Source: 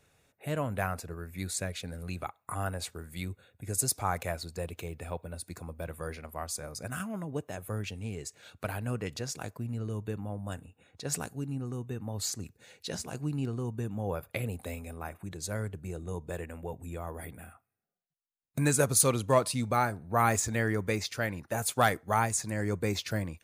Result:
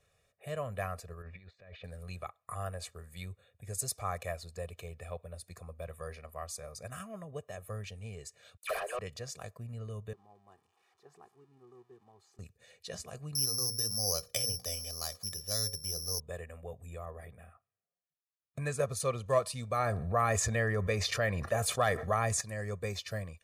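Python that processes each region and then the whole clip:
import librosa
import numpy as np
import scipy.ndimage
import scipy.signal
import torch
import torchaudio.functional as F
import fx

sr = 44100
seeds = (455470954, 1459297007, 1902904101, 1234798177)

y = fx.chain(x, sr, fx.low_shelf(hz=94.0, db=-7.0),
    fx.over_compress(threshold_db=-46.0, ratio=-1.0),
    fx.lowpass(hz=3400.0, slope=24), at=(1.22, 1.84))
y = fx.chain(y, sr, fx.steep_highpass(hz=340.0, slope=96),
    fx.dispersion(late='lows', ms=69.0, hz=2200.0),
    fx.leveller(passes=3), at=(8.57, 8.99))
y = fx.chain(y, sr, fx.crossing_spikes(level_db=-28.0),
    fx.double_bandpass(hz=560.0, octaves=1.2), at=(10.13, 12.39))
y = fx.chain(y, sr, fx.resample_bad(factor=8, down='filtered', up='zero_stuff'),
    fx.hum_notches(base_hz=60, count=9), at=(13.35, 16.2))
y = fx.chain(y, sr, fx.highpass(hz=47.0, slope=12),
    fx.high_shelf(hz=4400.0, db=-10.5), at=(17.05, 19.26))
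y = fx.chain(y, sr, fx.high_shelf(hz=3800.0, db=-7.0),
    fx.env_flatten(amount_pct=70), at=(19.79, 22.41))
y = scipy.signal.sosfilt(scipy.signal.bessel(2, 12000.0, 'lowpass', norm='mag', fs=sr, output='sos'), y)
y = fx.peak_eq(y, sr, hz=150.0, db=-3.0, octaves=1.1)
y = y + 0.77 * np.pad(y, (int(1.7 * sr / 1000.0), 0))[:len(y)]
y = y * 10.0 ** (-7.0 / 20.0)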